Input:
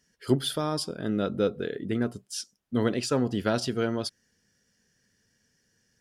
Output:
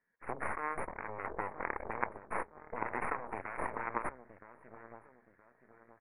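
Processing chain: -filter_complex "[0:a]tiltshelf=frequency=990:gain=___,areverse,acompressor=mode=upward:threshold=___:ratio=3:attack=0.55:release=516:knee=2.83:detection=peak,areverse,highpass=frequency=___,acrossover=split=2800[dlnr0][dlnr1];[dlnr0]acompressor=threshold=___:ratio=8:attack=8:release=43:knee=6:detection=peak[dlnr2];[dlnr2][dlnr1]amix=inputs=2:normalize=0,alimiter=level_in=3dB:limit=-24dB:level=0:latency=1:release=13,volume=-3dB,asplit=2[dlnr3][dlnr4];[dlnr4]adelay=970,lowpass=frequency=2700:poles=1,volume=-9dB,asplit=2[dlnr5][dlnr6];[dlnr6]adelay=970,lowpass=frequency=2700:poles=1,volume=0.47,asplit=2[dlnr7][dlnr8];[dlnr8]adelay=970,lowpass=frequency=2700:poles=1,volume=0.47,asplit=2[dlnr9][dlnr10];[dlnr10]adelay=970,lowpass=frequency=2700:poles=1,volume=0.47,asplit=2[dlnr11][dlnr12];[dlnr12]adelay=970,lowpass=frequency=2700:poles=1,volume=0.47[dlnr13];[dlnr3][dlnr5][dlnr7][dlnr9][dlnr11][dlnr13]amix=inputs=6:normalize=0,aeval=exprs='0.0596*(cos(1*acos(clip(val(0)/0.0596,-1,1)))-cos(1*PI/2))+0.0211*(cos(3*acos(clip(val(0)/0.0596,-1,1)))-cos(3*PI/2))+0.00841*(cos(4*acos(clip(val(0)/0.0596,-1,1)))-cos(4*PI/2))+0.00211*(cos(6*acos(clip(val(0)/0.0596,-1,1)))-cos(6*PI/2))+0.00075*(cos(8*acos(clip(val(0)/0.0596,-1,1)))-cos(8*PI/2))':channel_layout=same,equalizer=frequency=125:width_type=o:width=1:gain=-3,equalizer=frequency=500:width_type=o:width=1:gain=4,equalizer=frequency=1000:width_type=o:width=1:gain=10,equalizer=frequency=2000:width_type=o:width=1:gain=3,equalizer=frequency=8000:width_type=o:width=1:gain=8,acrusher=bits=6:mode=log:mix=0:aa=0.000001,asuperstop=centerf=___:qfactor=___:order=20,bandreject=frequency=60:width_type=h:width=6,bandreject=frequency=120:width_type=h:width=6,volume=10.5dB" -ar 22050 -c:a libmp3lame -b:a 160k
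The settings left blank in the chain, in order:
-3.5, -48dB, 83, -39dB, 5300, 0.63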